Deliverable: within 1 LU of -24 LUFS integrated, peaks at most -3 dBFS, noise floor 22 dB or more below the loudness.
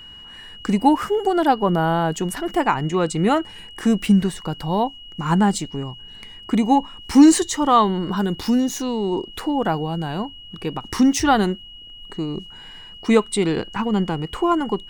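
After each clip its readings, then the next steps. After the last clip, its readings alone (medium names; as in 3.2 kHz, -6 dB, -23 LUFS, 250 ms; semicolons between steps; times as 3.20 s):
steady tone 2.9 kHz; tone level -39 dBFS; loudness -20.5 LUFS; peak level -1.5 dBFS; loudness target -24.0 LUFS
-> band-stop 2.9 kHz, Q 30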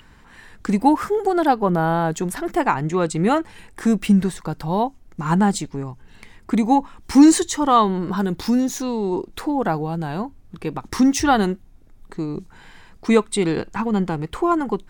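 steady tone not found; loudness -20.5 LUFS; peak level -1.5 dBFS; loudness target -24.0 LUFS
-> trim -3.5 dB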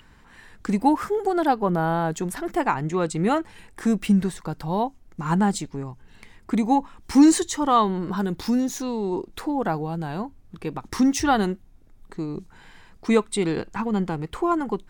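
loudness -24.0 LUFS; peak level -5.0 dBFS; noise floor -52 dBFS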